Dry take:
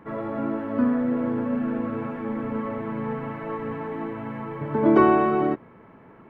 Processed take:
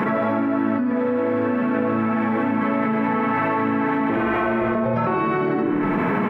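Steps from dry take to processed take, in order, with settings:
0:00.85–0:01.62: parametric band 180 Hz −13.5 dB 0.31 octaves
0:02.60–0:03.08: double-tracking delay 14 ms −4.5 dB
0:04.09–0:05.07: ring modulation 210 Hz
single-tap delay 75 ms −3.5 dB
convolution reverb RT60 0.65 s, pre-delay 3 ms, DRR 6 dB
envelope flattener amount 100%
level −6 dB

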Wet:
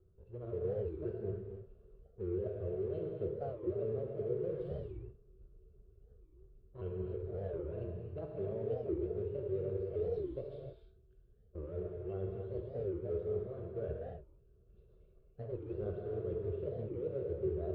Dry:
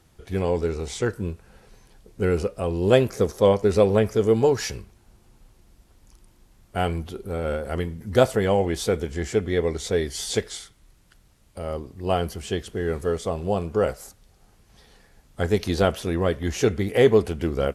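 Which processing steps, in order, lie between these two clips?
pitch shifter swept by a sawtooth +5.5 semitones, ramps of 524 ms
drawn EQ curve 320 Hz 0 dB, 620 Hz −10 dB, 2,200 Hz −19 dB
reversed playback
downward compressor 6 to 1, threshold −35 dBFS, peak gain reduction 16.5 dB
reversed playback
auto-filter notch square 3.3 Hz 910–2,500 Hz
phaser with its sweep stopped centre 1,300 Hz, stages 8
tuned comb filter 220 Hz, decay 0.8 s, mix 60%
hollow resonant body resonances 390/2,700 Hz, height 14 dB, ringing for 55 ms
in parallel at −4.5 dB: dead-zone distortion −57.5 dBFS
on the sum: high-frequency loss of the air 350 metres
reverb whose tail is shaped and stops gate 330 ms flat, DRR 0 dB
wow of a warped record 45 rpm, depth 250 cents
level +1 dB

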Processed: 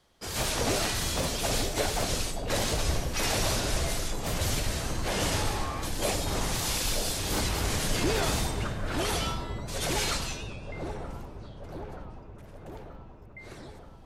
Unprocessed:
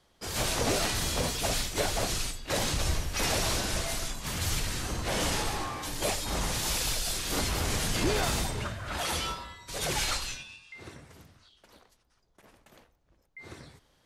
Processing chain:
delay with a low-pass on its return 929 ms, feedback 66%, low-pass 750 Hz, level −4.5 dB
on a send at −14.5 dB: convolution reverb RT60 0.20 s, pre-delay 92 ms
on the sum: wow of a warped record 78 rpm, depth 100 cents

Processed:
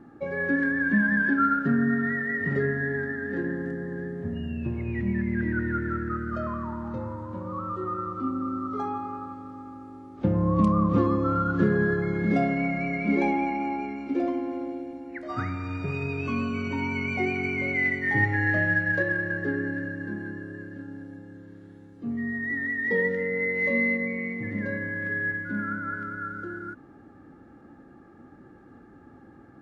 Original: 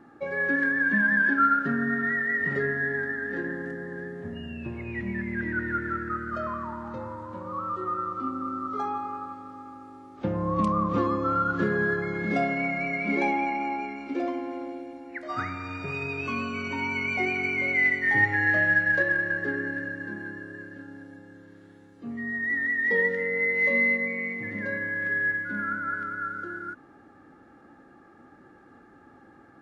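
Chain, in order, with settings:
low-shelf EQ 400 Hz +11.5 dB
level −3.5 dB

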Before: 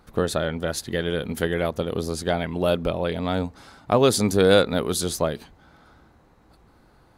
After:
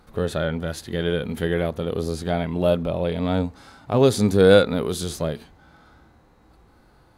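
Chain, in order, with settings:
harmonic and percussive parts rebalanced percussive −12 dB
level +4.5 dB

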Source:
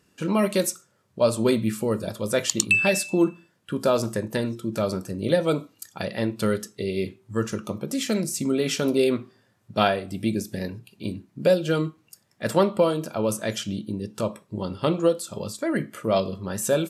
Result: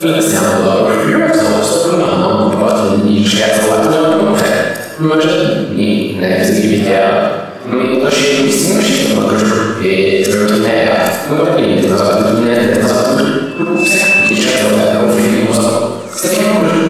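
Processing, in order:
played backwards from end to start
high-shelf EQ 9,900 Hz +8 dB
compressor whose output falls as the input rises −25 dBFS, ratio −0.5
tuned comb filter 53 Hz, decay 0.25 s, harmonics all, mix 60%
hum removal 56.63 Hz, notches 6
mid-hump overdrive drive 18 dB, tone 1,600 Hz, clips at −4.5 dBFS
single-tap delay 80 ms −5.5 dB
comb and all-pass reverb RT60 1 s, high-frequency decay 0.9×, pre-delay 25 ms, DRR −1 dB
boost into a limiter +15.5 dB
feedback echo with a swinging delay time 386 ms, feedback 71%, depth 103 cents, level −23 dB
level −1 dB

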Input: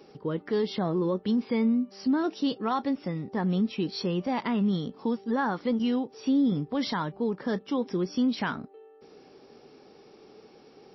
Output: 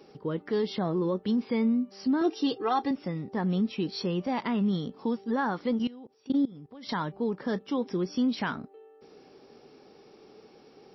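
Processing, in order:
0:02.21–0:02.91: comb filter 2.5 ms, depth 90%
0:05.87–0:06.89: output level in coarse steps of 22 dB
level −1 dB

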